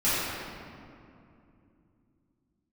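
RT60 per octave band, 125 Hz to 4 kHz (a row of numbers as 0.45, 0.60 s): 4.0, 4.0, 2.9, 2.4, 2.0, 1.4 s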